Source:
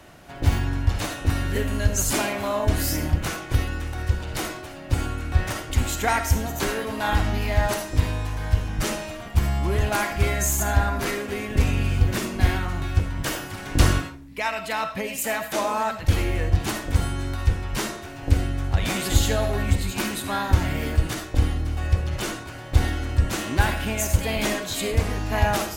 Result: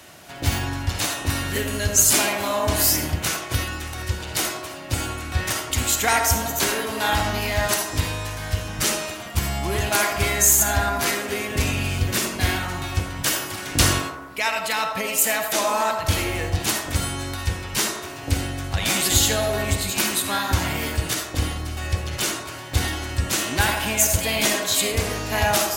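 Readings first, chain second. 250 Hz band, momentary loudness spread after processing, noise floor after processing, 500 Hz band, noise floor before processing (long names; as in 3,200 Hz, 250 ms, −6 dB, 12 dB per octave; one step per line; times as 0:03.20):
−0.5 dB, 9 LU, −35 dBFS, +1.5 dB, −38 dBFS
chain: high-pass filter 74 Hz
high-shelf EQ 2,200 Hz +11.5 dB
on a send: delay with a band-pass on its return 85 ms, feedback 62%, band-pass 680 Hz, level −5.5 dB
on the sum: level −1 dB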